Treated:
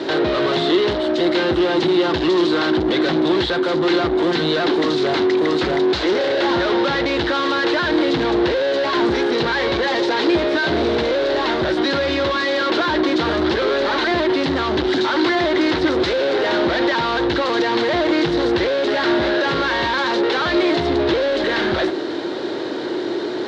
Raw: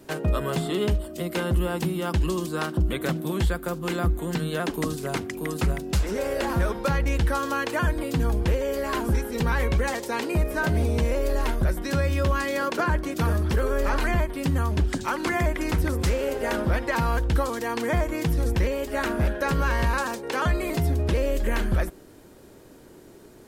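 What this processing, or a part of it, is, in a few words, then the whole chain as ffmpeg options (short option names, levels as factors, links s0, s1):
overdrive pedal into a guitar cabinet: -filter_complex "[0:a]asplit=2[s0][s1];[s1]highpass=f=720:p=1,volume=63.1,asoftclip=type=tanh:threshold=0.211[s2];[s0][s2]amix=inputs=2:normalize=0,lowpass=f=7800:p=1,volume=0.501,highpass=110,equalizer=f=180:t=q:w=4:g=-6,equalizer=f=340:t=q:w=4:g=9,equalizer=f=1200:t=q:w=4:g=-3,equalizer=f=2500:t=q:w=4:g=-6,equalizer=f=3900:t=q:w=4:g=7,lowpass=f=4300:w=0.5412,lowpass=f=4300:w=1.3066"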